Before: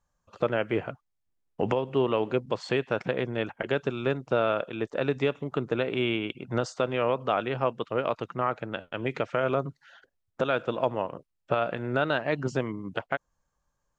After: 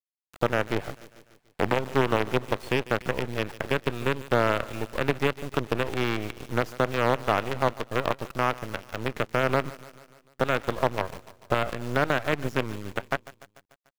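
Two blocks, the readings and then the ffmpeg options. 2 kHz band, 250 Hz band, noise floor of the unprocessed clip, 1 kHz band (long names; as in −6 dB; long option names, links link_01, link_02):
+4.0 dB, +0.5 dB, −79 dBFS, +3.0 dB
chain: -filter_complex "[0:a]acrusher=bits=4:dc=4:mix=0:aa=0.000001,aecho=1:1:147|294|441|588|735:0.106|0.0625|0.0369|0.0218|0.0128,acrossover=split=3100[link_01][link_02];[link_02]acompressor=threshold=-44dB:ratio=4:attack=1:release=60[link_03];[link_01][link_03]amix=inputs=2:normalize=0,volume=2dB"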